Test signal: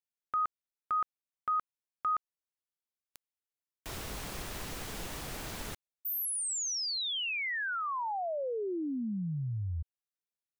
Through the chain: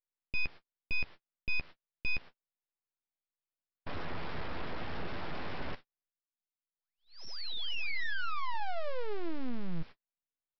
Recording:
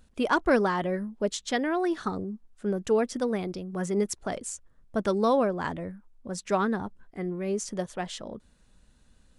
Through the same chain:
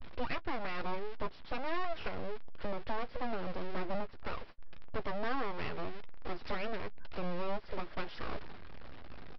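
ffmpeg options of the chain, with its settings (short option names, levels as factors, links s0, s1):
-filter_complex "[0:a]aeval=exprs='val(0)+0.5*0.0188*sgn(val(0))':c=same,lowpass=1700,agate=range=0.00355:threshold=0.00794:ratio=16:release=291:detection=peak,acompressor=threshold=0.0447:ratio=12:attack=0.36:release=854:knee=1:detection=peak,aresample=11025,aeval=exprs='abs(val(0))':c=same,aresample=44100,asplit=2[s0][s1];[s1]adelay=12,volume=0.251[s2];[s0][s2]amix=inputs=2:normalize=0,volume=1.12"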